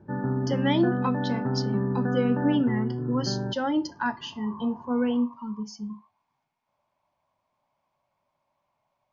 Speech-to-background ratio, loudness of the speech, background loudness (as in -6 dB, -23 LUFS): 0.5 dB, -28.5 LUFS, -29.0 LUFS